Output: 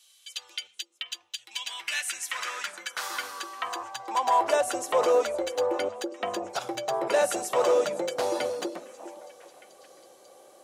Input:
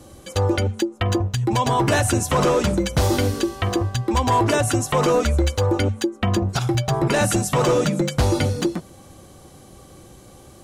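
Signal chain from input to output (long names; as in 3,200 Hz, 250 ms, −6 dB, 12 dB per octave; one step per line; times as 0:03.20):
echo through a band-pass that steps 406 ms, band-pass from 300 Hz, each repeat 1.4 octaves, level −11 dB
high-pass filter sweep 3,100 Hz → 550 Hz, 0:01.40–0:04.85
level −8 dB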